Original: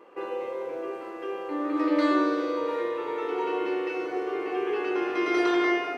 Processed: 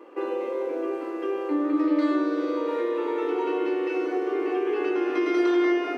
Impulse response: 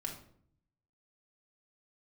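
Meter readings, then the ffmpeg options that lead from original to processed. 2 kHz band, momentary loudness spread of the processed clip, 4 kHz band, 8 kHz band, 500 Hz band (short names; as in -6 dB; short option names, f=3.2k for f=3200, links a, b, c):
-2.5 dB, 7 LU, -2.5 dB, n/a, +2.5 dB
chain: -filter_complex "[0:a]lowshelf=f=190:t=q:w=3:g=-13,acompressor=threshold=-25dB:ratio=2.5,asplit=2[a][b];[1:a]atrim=start_sample=2205[c];[b][c]afir=irnorm=-1:irlink=0,volume=-9.5dB[d];[a][d]amix=inputs=2:normalize=0"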